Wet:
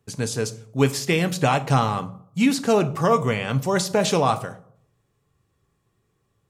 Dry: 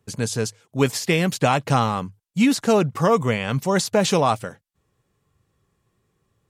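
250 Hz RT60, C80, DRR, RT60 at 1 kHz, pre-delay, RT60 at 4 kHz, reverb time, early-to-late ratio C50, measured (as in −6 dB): 0.65 s, 20.5 dB, 10.0 dB, 0.60 s, 3 ms, 0.35 s, 0.65 s, 17.0 dB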